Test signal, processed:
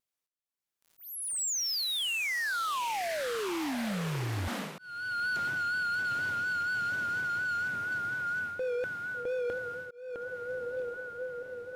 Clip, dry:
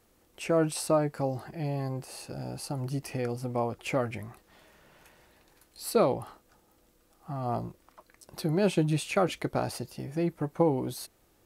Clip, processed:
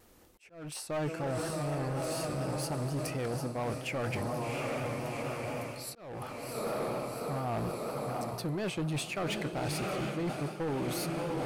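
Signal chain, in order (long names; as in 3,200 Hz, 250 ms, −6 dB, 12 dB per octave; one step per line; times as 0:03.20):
dynamic equaliser 1,900 Hz, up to +5 dB, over −42 dBFS, Q 0.71
feedback delay with all-pass diffusion 749 ms, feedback 67%, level −9 dB
reversed playback
downward compressor 6 to 1, threshold −34 dBFS
reversed playback
gain into a clipping stage and back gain 34.5 dB
pitch vibrato 4.2 Hz 49 cents
volume swells 469 ms
level +5 dB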